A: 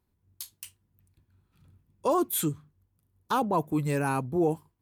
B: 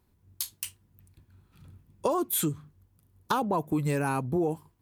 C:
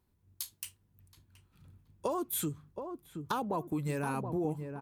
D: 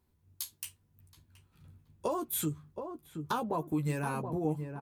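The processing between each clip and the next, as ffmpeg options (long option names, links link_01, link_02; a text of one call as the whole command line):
ffmpeg -i in.wav -af "acompressor=threshold=-32dB:ratio=6,volume=7.5dB" out.wav
ffmpeg -i in.wav -filter_complex "[0:a]asplit=2[link_01][link_02];[link_02]adelay=724,lowpass=frequency=840:poles=1,volume=-6dB,asplit=2[link_03][link_04];[link_04]adelay=724,lowpass=frequency=840:poles=1,volume=0.46,asplit=2[link_05][link_06];[link_06]adelay=724,lowpass=frequency=840:poles=1,volume=0.46,asplit=2[link_07][link_08];[link_08]adelay=724,lowpass=frequency=840:poles=1,volume=0.46,asplit=2[link_09][link_10];[link_10]adelay=724,lowpass=frequency=840:poles=1,volume=0.46,asplit=2[link_11][link_12];[link_12]adelay=724,lowpass=frequency=840:poles=1,volume=0.46[link_13];[link_01][link_03][link_05][link_07][link_09][link_11][link_13]amix=inputs=7:normalize=0,volume=-6.5dB" out.wav
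ffmpeg -i in.wav -filter_complex "[0:a]asplit=2[link_01][link_02];[link_02]adelay=13,volume=-7dB[link_03];[link_01][link_03]amix=inputs=2:normalize=0" out.wav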